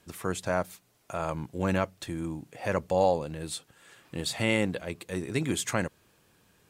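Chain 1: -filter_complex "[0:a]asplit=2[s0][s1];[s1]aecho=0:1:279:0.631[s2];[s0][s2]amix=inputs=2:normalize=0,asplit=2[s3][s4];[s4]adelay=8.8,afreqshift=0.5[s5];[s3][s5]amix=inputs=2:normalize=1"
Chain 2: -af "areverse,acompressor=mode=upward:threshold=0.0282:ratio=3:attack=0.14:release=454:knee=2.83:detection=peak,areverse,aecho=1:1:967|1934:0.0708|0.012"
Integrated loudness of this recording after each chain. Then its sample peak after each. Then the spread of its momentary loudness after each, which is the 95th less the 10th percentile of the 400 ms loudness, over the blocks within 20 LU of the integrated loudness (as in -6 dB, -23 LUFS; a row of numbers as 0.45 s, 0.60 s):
-33.5 LUFS, -31.0 LUFS; -15.5 dBFS, -11.0 dBFS; 10 LU, 17 LU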